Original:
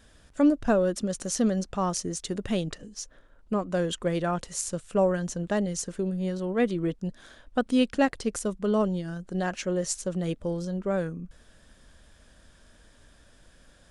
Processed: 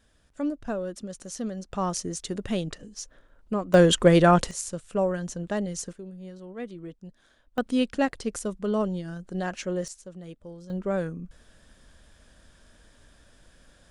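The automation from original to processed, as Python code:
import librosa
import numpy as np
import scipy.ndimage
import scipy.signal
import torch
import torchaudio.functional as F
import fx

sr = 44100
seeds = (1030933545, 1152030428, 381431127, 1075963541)

y = fx.gain(x, sr, db=fx.steps((0.0, -8.0), (1.72, -0.5), (3.74, 10.5), (4.51, -2.0), (5.93, -12.0), (7.58, -1.5), (9.88, -12.5), (10.7, 0.0)))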